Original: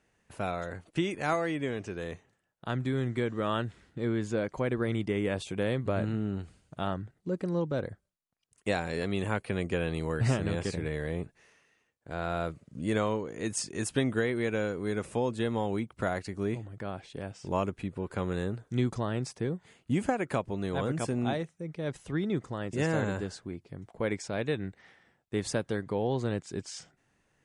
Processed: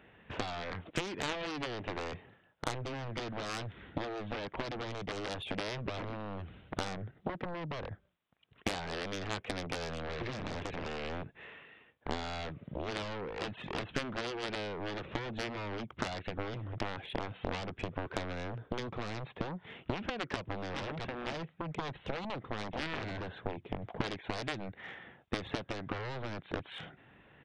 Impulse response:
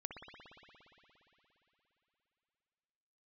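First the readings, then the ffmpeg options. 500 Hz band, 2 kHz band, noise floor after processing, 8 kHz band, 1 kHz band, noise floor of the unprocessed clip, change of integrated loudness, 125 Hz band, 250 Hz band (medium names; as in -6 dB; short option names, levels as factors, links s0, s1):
-8.0 dB, -3.0 dB, -66 dBFS, -9.0 dB, -3.0 dB, -75 dBFS, -7.0 dB, -9.0 dB, -9.5 dB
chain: -af "aresample=8000,aeval=exprs='clip(val(0),-1,0.0398)':c=same,aresample=44100,highpass=f=58:p=1,acompressor=threshold=0.00708:ratio=8,aeval=exprs='0.0335*(cos(1*acos(clip(val(0)/0.0335,-1,1)))-cos(1*PI/2))+0.0106*(cos(7*acos(clip(val(0)/0.0335,-1,1)))-cos(7*PI/2))':c=same,volume=3.55"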